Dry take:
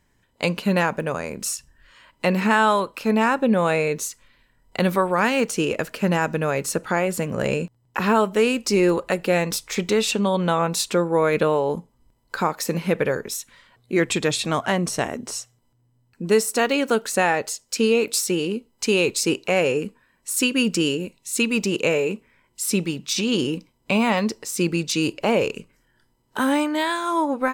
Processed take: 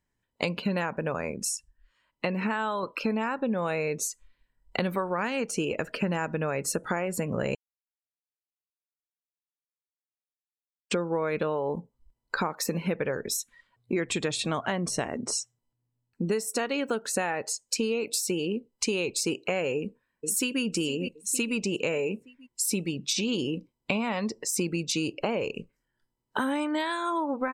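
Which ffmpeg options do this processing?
-filter_complex "[0:a]asplit=2[s0][s1];[s1]afade=t=in:st=19.77:d=0.01,afade=t=out:st=20.62:d=0.01,aecho=0:1:460|920|1380|1840|2300:0.199526|0.0997631|0.0498816|0.0249408|0.0124704[s2];[s0][s2]amix=inputs=2:normalize=0,asplit=5[s3][s4][s5][s6][s7];[s3]atrim=end=1.312[s8];[s4]atrim=start=1.308:end=2.832,asetpts=PTS-STARTPTS,volume=0.596[s9];[s5]atrim=start=2.828:end=7.55,asetpts=PTS-STARTPTS,afade=t=out:st=4.718:d=0.004:c=hsin[s10];[s6]atrim=start=7.55:end=10.91,asetpts=PTS-STARTPTS,volume=0[s11];[s7]atrim=start=10.91,asetpts=PTS-STARTPTS,afade=t=in:d=0.004:c=hsin[s12];[s8][s9]acrossfade=d=0.004:c1=hsin:c2=hsin[s13];[s10][s11][s12]concat=n=3:v=0:a=1[s14];[s13][s14]acrossfade=d=0.004:c1=hsin:c2=hsin,afftdn=nr=20:nf=-40,acompressor=threshold=0.0316:ratio=6,volume=1.58"

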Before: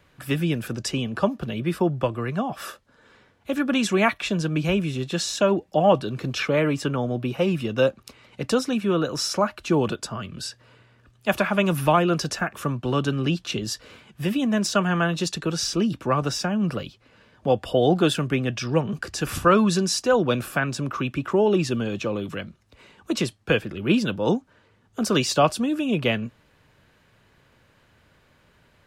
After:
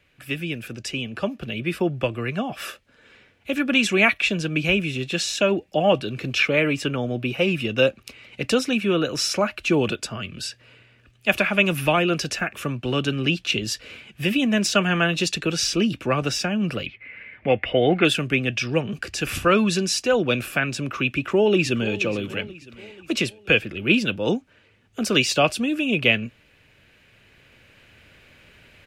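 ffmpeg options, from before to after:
-filter_complex "[0:a]asettb=1/sr,asplit=3[s0][s1][s2];[s0]atrim=end=16.864[s3];[s1]atrim=start=16.86:end=18.05,asetpts=PTS-STARTPTS,afade=t=in:d=0.004:c=qsin,afade=t=out:st=1.186:d=0.004:c=qsin,lowpass=f=2100:t=q:w=12[s4];[s2]atrim=start=18.046[s5];[s3][s4]acrossfade=d=0.004:c1=hsin:c2=qsin[s6];[s6][s5]acrossfade=d=0.004:c1=qsin:c2=hsin,asplit=2[s7][s8];[s8]afade=t=in:st=21.12:d=0.01,afade=t=out:st=21.94:d=0.01,aecho=0:1:480|960|1440|1920|2400:0.158489|0.0871691|0.047943|0.0263687|0.0145028[s9];[s7][s9]amix=inputs=2:normalize=0,dynaudnorm=f=230:g=13:m=3.76,equalizer=f=160:t=o:w=0.67:g=-3,equalizer=f=1000:t=o:w=0.67:g=-7,equalizer=f=2500:t=o:w=0.67:g=10,volume=0.562"

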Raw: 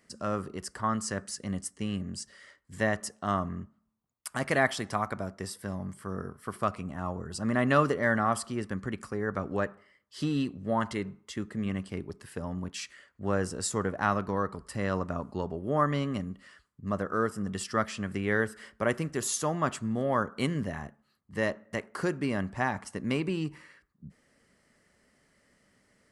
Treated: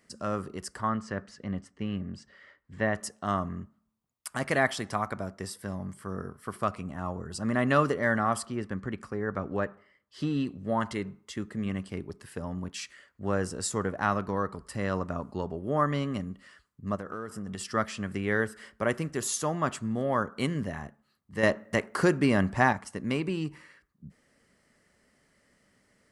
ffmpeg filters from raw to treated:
-filter_complex "[0:a]asettb=1/sr,asplit=3[s0][s1][s2];[s0]atrim=end=0.894[s3];[s1]atrim=start=0.89:end=2.95,asetpts=PTS-STARTPTS,afade=t=in:d=0.004:c=qsin,afade=t=out:st=2.056:d=0.004:c=qsin,lowpass=2800[s4];[s2]atrim=start=2.946[s5];[s3][s4]acrossfade=d=0.004:c1=hsin:c2=qsin[s6];[s6][s5]acrossfade=d=0.004:c1=qsin:c2=hsin,asettb=1/sr,asplit=3[s7][s8][s9];[s7]atrim=end=8.454[s10];[s8]atrim=start=8.45:end=10.47,asetpts=PTS-STARTPTS,afade=t=in:d=0.004:c=qsin,afade=t=out:st=2.016:d=0.004:c=qsin,lowpass=f=3400:p=1[s11];[s9]atrim=start=10.466[s12];[s10][s11]acrossfade=d=0.004:c1=hsin:c2=qsin[s13];[s13][s12]acrossfade=d=0.004:c1=qsin:c2=hsin,asplit=3[s14][s15][s16];[s14]afade=t=out:st=16.95:d=0.02[s17];[s15]acompressor=threshold=0.0251:ratio=12:attack=3.2:release=140:knee=1:detection=peak,afade=t=in:st=16.95:d=0.02,afade=t=out:st=17.68:d=0.02[s18];[s16]afade=t=in:st=17.68:d=0.02[s19];[s17][s18][s19]amix=inputs=3:normalize=0,asettb=1/sr,asplit=3[s20][s21][s22];[s20]atrim=end=21.434[s23];[s21]atrim=start=21.43:end=22.73,asetpts=PTS-STARTPTS,afade=t=in:d=0.004:c=qsin,afade=t=out:st=1.296:d=0.004:c=qsin,acontrast=68[s24];[s22]atrim=start=22.726[s25];[s23][s24]acrossfade=d=0.004:c1=hsin:c2=qsin[s26];[s26][s25]acrossfade=d=0.004:c1=qsin:c2=hsin"

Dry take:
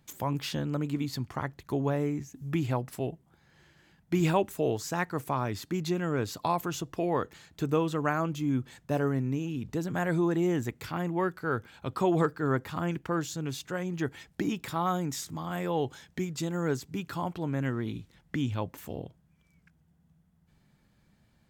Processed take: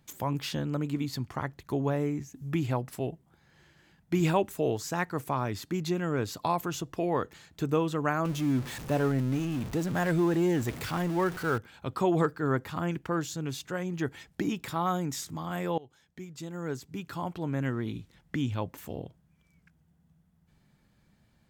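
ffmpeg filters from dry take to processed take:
-filter_complex "[0:a]asettb=1/sr,asplit=3[s0][s1][s2];[s0]atrim=end=8.254[s3];[s1]atrim=start=8.25:end=11.58,asetpts=PTS-STARTPTS,afade=t=in:d=0.004:c=qsin,afade=t=out:st=3.326:d=0.004:c=qsin,aeval=exprs='val(0)+0.5*0.0168*sgn(val(0))':c=same[s4];[s2]atrim=start=11.576[s5];[s3][s4]acrossfade=d=0.004:c1=hsin:c2=qsin[s6];[s6][s5]acrossfade=d=0.004:c1=qsin:c2=hsin,asplit=2[s7][s8];[s7]atrim=end=15.78,asetpts=PTS-STARTPTS,afade=t=out:st=15.776:d=0.004:c=hsin:silence=0.0707946[s9];[s8]atrim=start=15.78,asetpts=PTS-STARTPTS,afade=t=in:d=1.77:silence=0.0707946[s10];[s9][s10]concat=n=2:v=0:a=1"

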